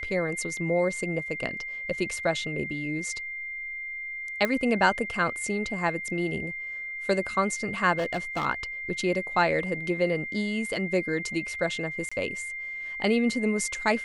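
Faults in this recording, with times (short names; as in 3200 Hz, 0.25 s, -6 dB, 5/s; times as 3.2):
tone 2100 Hz -33 dBFS
4.45 pop -13 dBFS
7.97–8.46 clipped -24 dBFS
12.09–12.12 gap 25 ms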